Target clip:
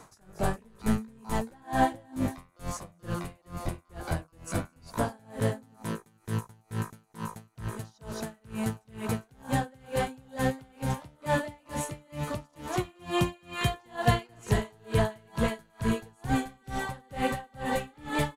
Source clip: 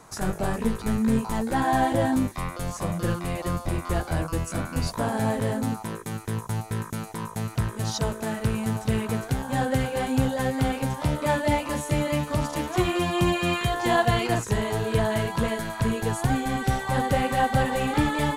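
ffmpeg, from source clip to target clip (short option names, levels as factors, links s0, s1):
-af "aecho=1:1:225:0.2,aeval=exprs='val(0)*pow(10,-33*(0.5-0.5*cos(2*PI*2.2*n/s))/20)':c=same"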